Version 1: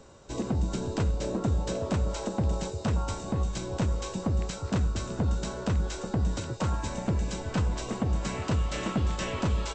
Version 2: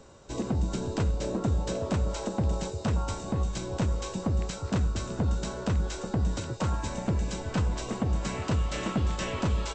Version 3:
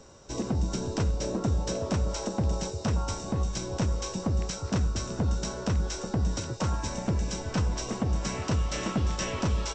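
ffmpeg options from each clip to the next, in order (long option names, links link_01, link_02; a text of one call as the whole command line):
ffmpeg -i in.wav -af anull out.wav
ffmpeg -i in.wav -af "equalizer=frequency=5600:width=6.1:gain=11" out.wav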